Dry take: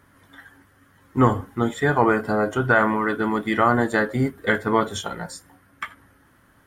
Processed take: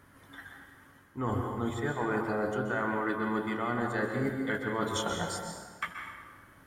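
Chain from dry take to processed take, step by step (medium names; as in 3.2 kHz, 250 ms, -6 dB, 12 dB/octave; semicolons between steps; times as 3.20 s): reverse; compression 10:1, threshold -27 dBFS, peak gain reduction 16 dB; reverse; plate-style reverb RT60 1.5 s, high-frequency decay 0.7×, pre-delay 115 ms, DRR 3 dB; trim -2 dB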